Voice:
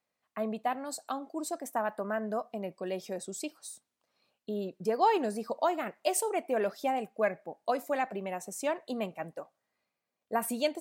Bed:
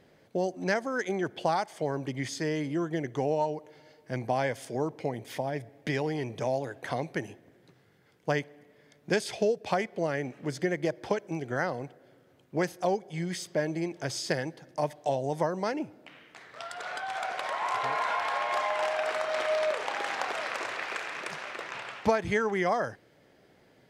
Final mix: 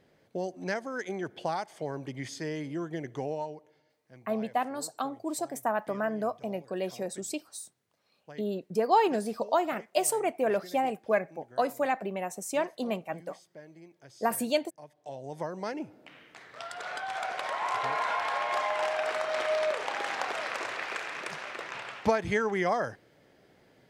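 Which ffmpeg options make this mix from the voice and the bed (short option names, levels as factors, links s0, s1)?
-filter_complex "[0:a]adelay=3900,volume=1.33[s0];[1:a]volume=5.62,afade=t=out:st=3.15:d=0.84:silence=0.16788,afade=t=in:st=14.92:d=1.28:silence=0.105925[s1];[s0][s1]amix=inputs=2:normalize=0"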